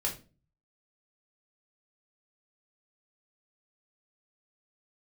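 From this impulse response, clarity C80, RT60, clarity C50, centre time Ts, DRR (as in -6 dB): 16.5 dB, 0.35 s, 10.5 dB, 17 ms, -2.0 dB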